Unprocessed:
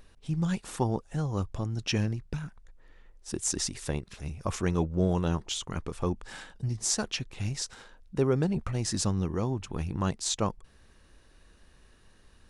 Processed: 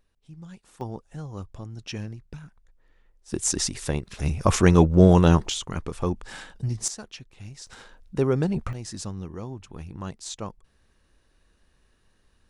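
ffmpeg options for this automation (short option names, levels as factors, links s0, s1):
-af "asetnsamples=n=441:p=0,asendcmd='0.81 volume volume -6dB;3.32 volume volume 5dB;4.19 volume volume 11.5dB;5.5 volume volume 3.5dB;6.88 volume volume -9dB;7.67 volume volume 3dB;8.73 volume volume -6dB',volume=0.188"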